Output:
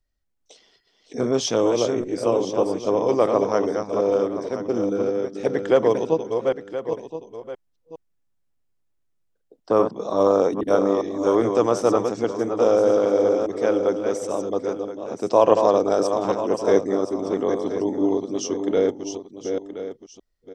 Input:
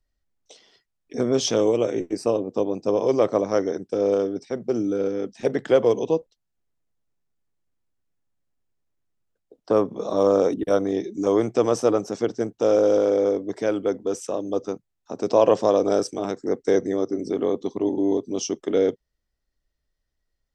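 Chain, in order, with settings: reverse delay 0.408 s, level -5.5 dB; dynamic EQ 1000 Hz, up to +6 dB, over -34 dBFS, Q 1.3; on a send: echo 1.023 s -12 dB; on the sum: gain -1 dB

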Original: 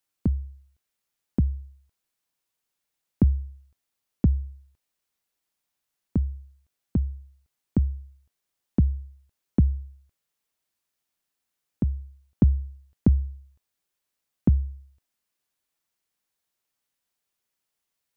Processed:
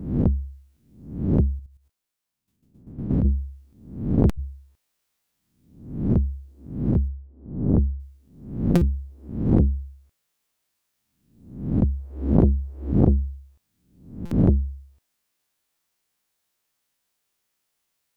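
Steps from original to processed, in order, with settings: spectral swells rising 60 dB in 0.65 s; 1.59–3.25 level quantiser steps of 11 dB; 7.08–8 LPF 1100 Hz 12 dB/oct; stuck buffer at 4.29/8.75/14.25, samples 256, times 10; core saturation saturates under 360 Hz; gain +4 dB

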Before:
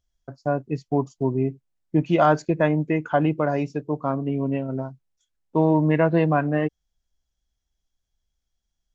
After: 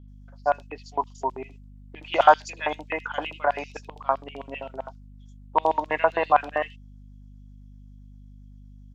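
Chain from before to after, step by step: LFO high-pass square 7.7 Hz 840–3000 Hz; hum 50 Hz, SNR 19 dB; bands offset in time lows, highs 80 ms, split 3800 Hz; gain +2.5 dB

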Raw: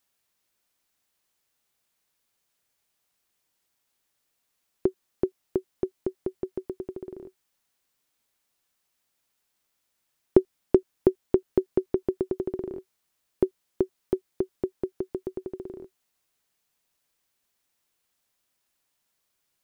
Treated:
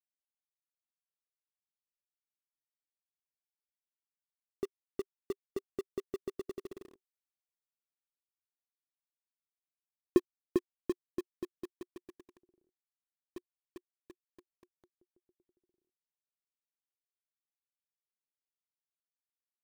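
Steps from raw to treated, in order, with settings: Doppler pass-by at 7.08, 16 m/s, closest 10 m; dynamic EQ 260 Hz, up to +5 dB, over -51 dBFS, Q 2; reverb removal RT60 0.6 s; in parallel at -8 dB: companded quantiser 2-bit; on the sum: upward expander 2.5:1, over -38 dBFS; gain +2.5 dB

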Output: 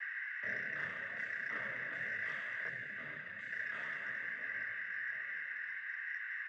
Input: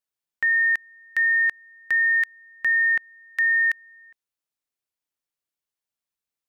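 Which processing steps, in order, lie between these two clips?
spectral trails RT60 2.83 s; EQ curve 230 Hz 0 dB, 390 Hz -13 dB, 550 Hz +6 dB, 890 Hz -27 dB, 1300 Hz +1 dB, 1800 Hz -24 dB, 2700 Hz -10 dB, 4400 Hz -28 dB, 6300 Hz -25 dB; outdoor echo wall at 240 m, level -10 dB; whine 1800 Hz -39 dBFS; noise vocoder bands 16; 2.67–3.51 bell 780 Hz -8.5 dB 2.7 oct; soft clip -25 dBFS, distortion -31 dB; detuned doubles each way 15 cents; gain +3.5 dB

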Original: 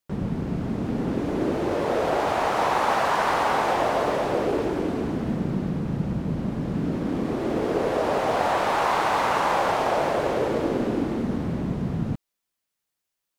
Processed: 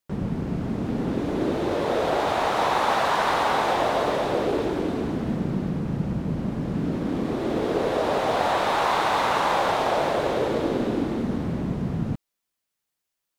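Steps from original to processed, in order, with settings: dynamic EQ 3700 Hz, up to +6 dB, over -54 dBFS, Q 3.5

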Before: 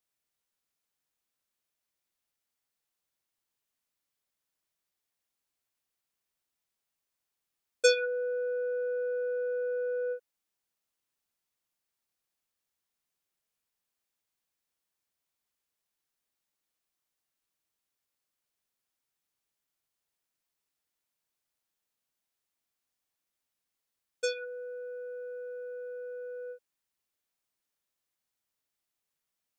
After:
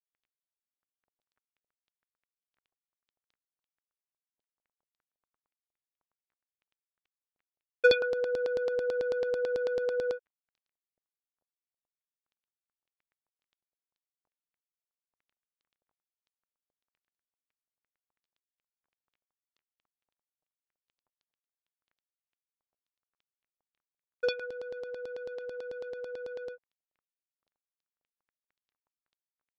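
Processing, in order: crackle 15/s -52 dBFS; crossover distortion -56 dBFS; LFO low-pass saw down 9.1 Hz 560–4500 Hz

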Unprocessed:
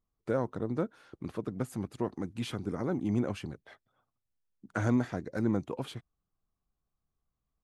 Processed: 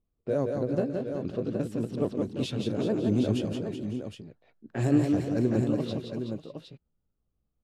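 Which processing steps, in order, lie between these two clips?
repeated pitch sweeps +3.5 st, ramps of 1.023 s; band shelf 1300 Hz -10 dB; low-pass opened by the level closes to 1800 Hz, open at -28.5 dBFS; tapped delay 0.155/0.172/0.376/0.547/0.59/0.764 s -16.5/-5/-9.5/-18/-19/-8 dB; gain +5 dB

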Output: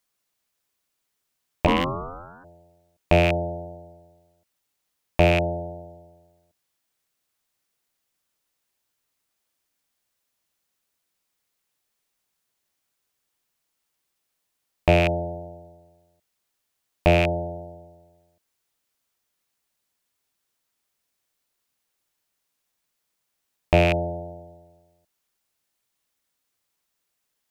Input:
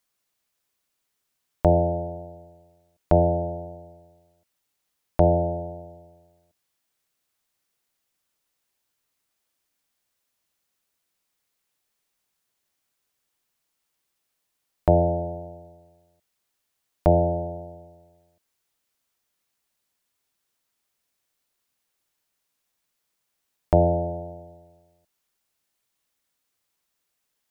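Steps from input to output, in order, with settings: rattling part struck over -22 dBFS, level -11 dBFS; 1.66–2.43 ring modulator 350 Hz -> 900 Hz

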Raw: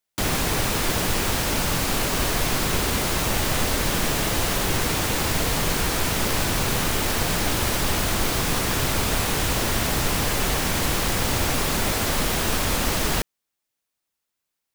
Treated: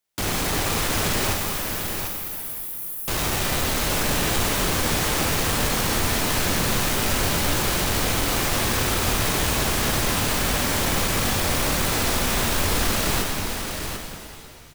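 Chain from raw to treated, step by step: hard clip -23.5 dBFS, distortion -9 dB; 1.33–3.08 inverse Chebyshev high-pass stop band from 2300 Hz, stop band 80 dB; echo 0.745 s -7 dB; shimmer reverb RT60 2.6 s, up +7 st, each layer -8 dB, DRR 2 dB; gain +1 dB

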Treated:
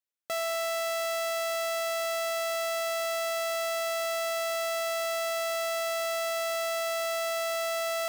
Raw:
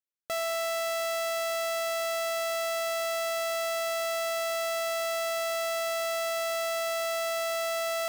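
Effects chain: HPF 160 Hz 6 dB/oct

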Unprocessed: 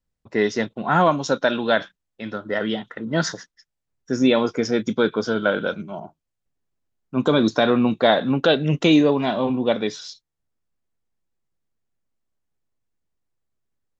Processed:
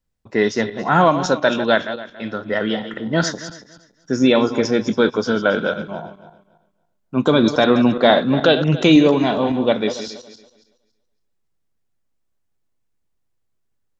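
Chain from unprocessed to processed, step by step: regenerating reverse delay 0.14 s, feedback 46%, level -11 dB; gain +3 dB

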